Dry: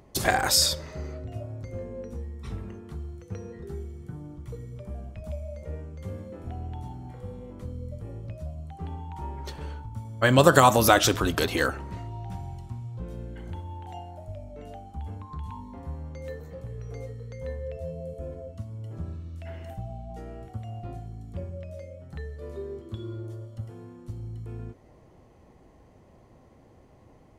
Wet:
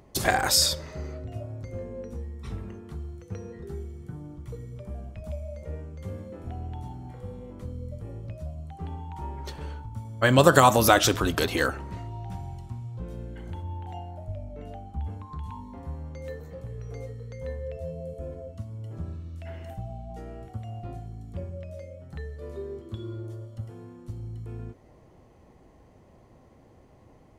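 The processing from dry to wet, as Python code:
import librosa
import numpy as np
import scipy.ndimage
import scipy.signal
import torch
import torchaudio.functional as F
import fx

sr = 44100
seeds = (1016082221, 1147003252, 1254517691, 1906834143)

y = fx.bass_treble(x, sr, bass_db=4, treble_db=-5, at=(13.62, 15.1))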